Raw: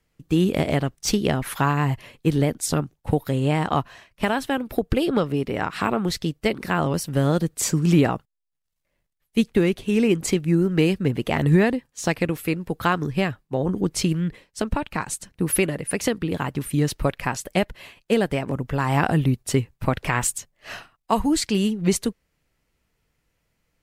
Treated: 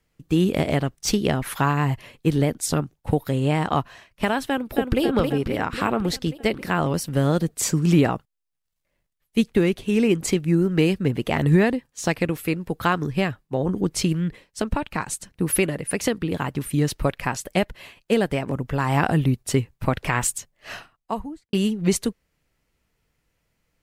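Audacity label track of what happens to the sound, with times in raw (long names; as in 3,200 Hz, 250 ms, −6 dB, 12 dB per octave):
4.480000	5.020000	delay throw 270 ms, feedback 65%, level −4.5 dB
20.750000	21.530000	fade out and dull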